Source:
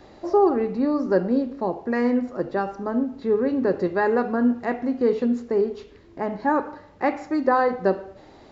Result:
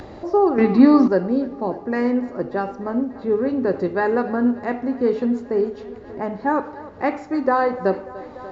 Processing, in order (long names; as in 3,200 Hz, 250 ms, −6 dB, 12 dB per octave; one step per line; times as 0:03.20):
parametric band 92 Hz +4.5 dB 0.77 octaves
feedback echo with a high-pass in the loop 294 ms, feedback 79%, high-pass 180 Hz, level −18 dB
upward compression, threshold −29 dBFS
0:00.58–0:01.08: graphic EQ with 10 bands 125 Hz +6 dB, 250 Hz +10 dB, 1,000 Hz +7 dB, 2,000 Hz +10 dB, 4,000 Hz +10 dB
one half of a high-frequency compander decoder only
level +1 dB